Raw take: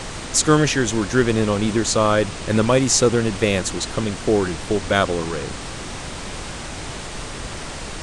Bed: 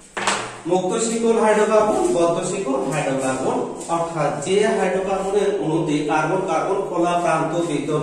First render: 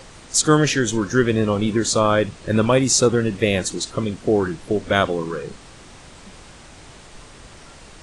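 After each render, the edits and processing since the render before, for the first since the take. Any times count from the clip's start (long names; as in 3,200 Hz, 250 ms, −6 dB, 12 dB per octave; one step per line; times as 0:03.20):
noise reduction from a noise print 12 dB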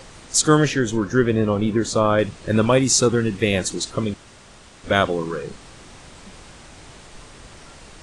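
0:00.67–0:02.19: high-shelf EQ 2,500 Hz −8 dB
0:02.81–0:03.53: parametric band 590 Hz −11.5 dB 0.25 octaves
0:04.14–0:04.84: fill with room tone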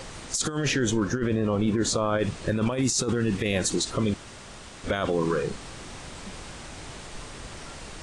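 compressor whose output falls as the input rises −20 dBFS, ratio −0.5
brickwall limiter −15.5 dBFS, peak gain reduction 7.5 dB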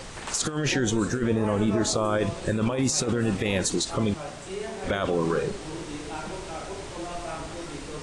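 mix in bed −17 dB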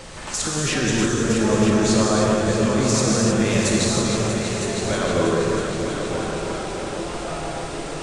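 echo machine with several playback heads 320 ms, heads all three, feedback 57%, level −11 dB
reverb whose tail is shaped and stops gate 340 ms flat, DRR −3 dB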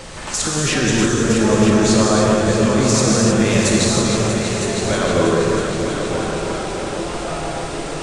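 level +4 dB
brickwall limiter −3 dBFS, peak gain reduction 1 dB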